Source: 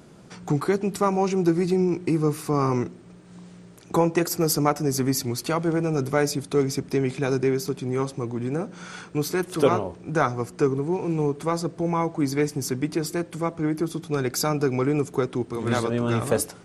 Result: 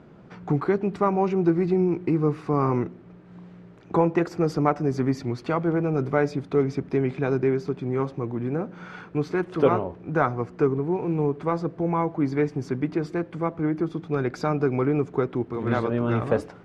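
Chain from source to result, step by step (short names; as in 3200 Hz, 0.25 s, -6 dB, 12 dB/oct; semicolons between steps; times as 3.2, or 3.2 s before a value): LPF 2200 Hz 12 dB/oct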